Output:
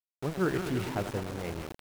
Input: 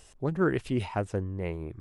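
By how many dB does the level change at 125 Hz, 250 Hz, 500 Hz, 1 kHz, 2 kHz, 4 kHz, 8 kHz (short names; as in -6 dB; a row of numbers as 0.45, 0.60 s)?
-3.5, -2.5, -2.5, -1.0, -1.0, +3.5, +6.5 dB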